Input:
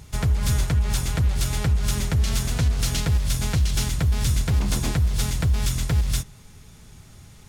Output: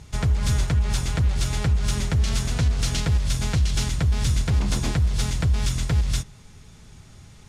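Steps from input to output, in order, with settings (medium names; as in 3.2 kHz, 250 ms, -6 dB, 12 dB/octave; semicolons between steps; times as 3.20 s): low-pass 8.5 kHz 12 dB/octave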